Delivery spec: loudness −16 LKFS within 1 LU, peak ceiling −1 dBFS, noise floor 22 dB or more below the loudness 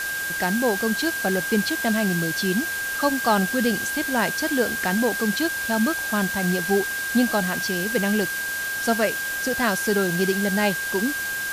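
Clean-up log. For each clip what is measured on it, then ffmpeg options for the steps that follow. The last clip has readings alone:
interfering tone 1,600 Hz; level of the tone −26 dBFS; background noise floor −28 dBFS; target noise floor −45 dBFS; integrated loudness −22.5 LKFS; sample peak −7.5 dBFS; target loudness −16.0 LKFS
→ -af "bandreject=frequency=1600:width=30"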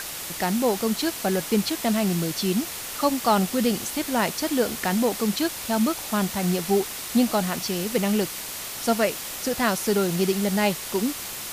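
interfering tone none found; background noise floor −34 dBFS; target noise floor −47 dBFS
→ -af "afftdn=noise_reduction=13:noise_floor=-34"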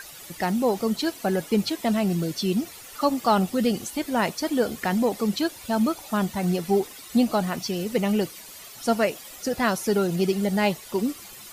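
background noise floor −43 dBFS; target noise floor −47 dBFS
→ -af "afftdn=noise_reduction=6:noise_floor=-43"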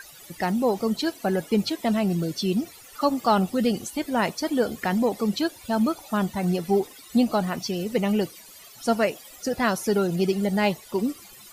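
background noise floor −47 dBFS; integrated loudness −25.0 LKFS; sample peak −8.5 dBFS; target loudness −16.0 LKFS
→ -af "volume=9dB,alimiter=limit=-1dB:level=0:latency=1"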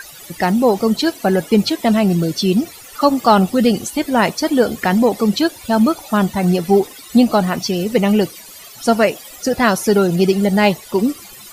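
integrated loudness −16.0 LKFS; sample peak −1.0 dBFS; background noise floor −38 dBFS

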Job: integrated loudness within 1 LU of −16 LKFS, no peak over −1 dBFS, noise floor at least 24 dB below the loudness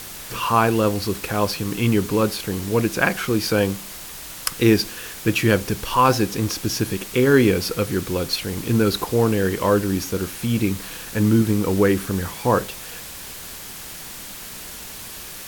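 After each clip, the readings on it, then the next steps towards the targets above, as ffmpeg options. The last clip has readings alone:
background noise floor −36 dBFS; target noise floor −45 dBFS; integrated loudness −21.0 LKFS; sample peak −2.0 dBFS; target loudness −16.0 LKFS
→ -af "afftdn=noise_reduction=9:noise_floor=-36"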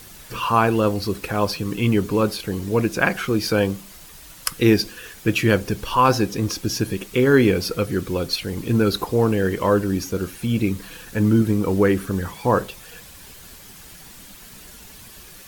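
background noise floor −43 dBFS; target noise floor −45 dBFS
→ -af "afftdn=noise_reduction=6:noise_floor=-43"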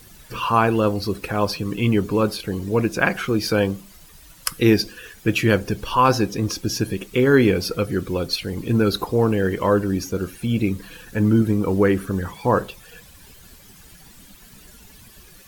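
background noise floor −47 dBFS; integrated loudness −21.0 LKFS; sample peak −2.0 dBFS; target loudness −16.0 LKFS
→ -af "volume=5dB,alimiter=limit=-1dB:level=0:latency=1"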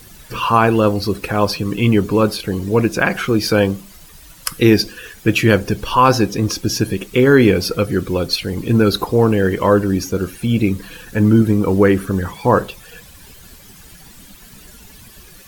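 integrated loudness −16.5 LKFS; sample peak −1.0 dBFS; background noise floor −42 dBFS

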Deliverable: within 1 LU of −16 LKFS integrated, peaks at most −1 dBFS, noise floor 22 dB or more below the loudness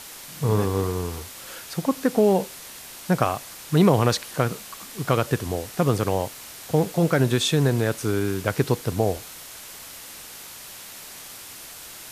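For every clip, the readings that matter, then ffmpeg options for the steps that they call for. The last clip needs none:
background noise floor −41 dBFS; target noise floor −46 dBFS; integrated loudness −23.5 LKFS; sample peak −4.0 dBFS; target loudness −16.0 LKFS
→ -af "afftdn=noise_reduction=6:noise_floor=-41"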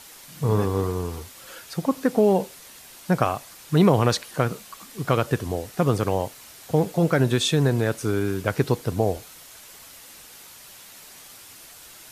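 background noise floor −46 dBFS; integrated loudness −23.5 LKFS; sample peak −4.0 dBFS; target loudness −16.0 LKFS
→ -af "volume=7.5dB,alimiter=limit=-1dB:level=0:latency=1"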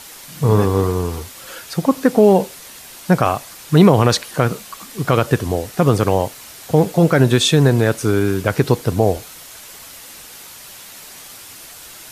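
integrated loudness −16.5 LKFS; sample peak −1.0 dBFS; background noise floor −39 dBFS

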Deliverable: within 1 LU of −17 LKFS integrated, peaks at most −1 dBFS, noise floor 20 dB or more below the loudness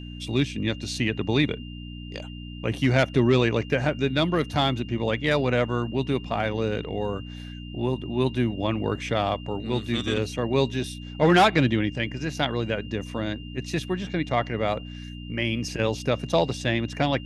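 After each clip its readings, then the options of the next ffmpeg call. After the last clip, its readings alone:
mains hum 60 Hz; hum harmonics up to 300 Hz; level of the hum −35 dBFS; interfering tone 2,800 Hz; level of the tone −45 dBFS; integrated loudness −25.5 LKFS; sample peak −6.0 dBFS; target loudness −17.0 LKFS
→ -af "bandreject=frequency=60:width_type=h:width=4,bandreject=frequency=120:width_type=h:width=4,bandreject=frequency=180:width_type=h:width=4,bandreject=frequency=240:width_type=h:width=4,bandreject=frequency=300:width_type=h:width=4"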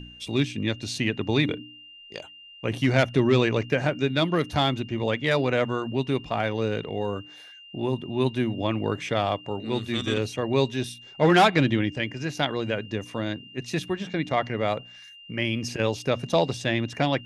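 mains hum none found; interfering tone 2,800 Hz; level of the tone −45 dBFS
→ -af "bandreject=frequency=2800:width=30"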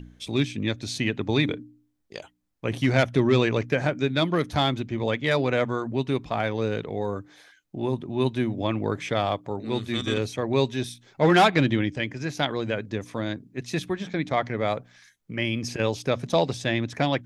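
interfering tone none found; integrated loudness −26.0 LKFS; sample peak −5.5 dBFS; target loudness −17.0 LKFS
→ -af "volume=9dB,alimiter=limit=-1dB:level=0:latency=1"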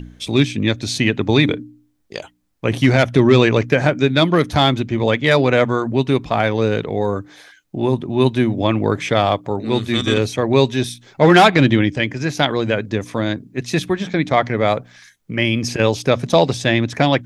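integrated loudness −17.0 LKFS; sample peak −1.0 dBFS; background noise floor −56 dBFS

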